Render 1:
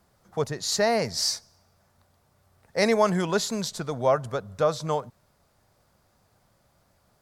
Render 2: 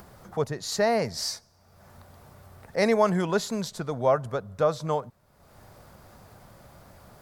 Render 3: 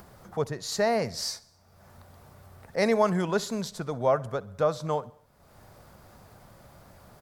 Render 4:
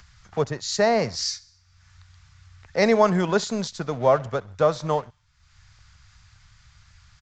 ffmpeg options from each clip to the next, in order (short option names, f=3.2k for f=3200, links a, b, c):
-af "acompressor=mode=upward:threshold=-36dB:ratio=2.5,equalizer=f=6k:w=0.47:g=-5.5"
-af "aecho=1:1:66|132|198|264:0.075|0.042|0.0235|0.0132,volume=-1.5dB"
-filter_complex "[0:a]acrossover=split=110|1500[a][b][c];[b]aeval=exprs='sgn(val(0))*max(abs(val(0))-0.00501,0)':c=same[d];[a][d][c]amix=inputs=3:normalize=0,aresample=16000,aresample=44100,volume=5.5dB"